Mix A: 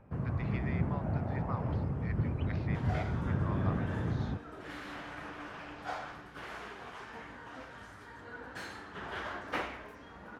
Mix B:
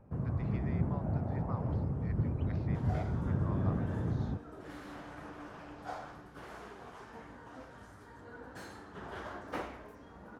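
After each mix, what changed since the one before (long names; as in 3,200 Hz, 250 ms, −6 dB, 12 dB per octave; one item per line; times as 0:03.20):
master: add parametric band 2,500 Hz −9.5 dB 2.1 octaves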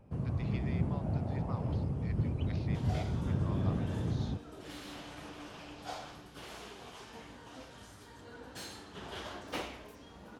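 master: add high shelf with overshoot 2,200 Hz +9 dB, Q 1.5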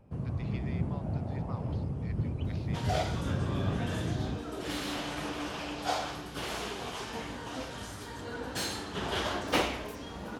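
second sound +11.0 dB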